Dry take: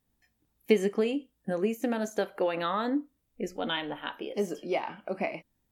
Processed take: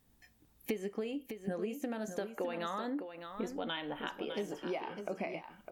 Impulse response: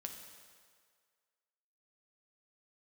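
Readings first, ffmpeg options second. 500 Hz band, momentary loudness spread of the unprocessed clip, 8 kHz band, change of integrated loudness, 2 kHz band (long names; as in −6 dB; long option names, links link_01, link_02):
−9.0 dB, 10 LU, −6.0 dB, −8.5 dB, −7.0 dB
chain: -filter_complex "[0:a]acompressor=threshold=-45dB:ratio=4,asplit=2[link_01][link_02];[link_02]aecho=0:1:606:0.376[link_03];[link_01][link_03]amix=inputs=2:normalize=0,volume=7dB"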